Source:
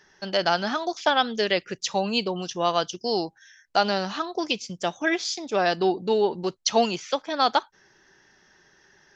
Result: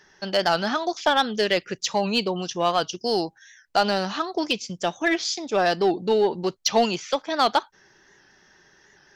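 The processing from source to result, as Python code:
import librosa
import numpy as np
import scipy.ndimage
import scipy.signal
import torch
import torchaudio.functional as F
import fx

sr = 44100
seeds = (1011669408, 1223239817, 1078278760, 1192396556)

p1 = 10.0 ** (-18.0 / 20.0) * (np.abs((x / 10.0 ** (-18.0 / 20.0) + 3.0) % 4.0 - 2.0) - 1.0)
p2 = x + F.gain(torch.from_numpy(p1), -11.0).numpy()
y = fx.record_warp(p2, sr, rpm=78.0, depth_cents=100.0)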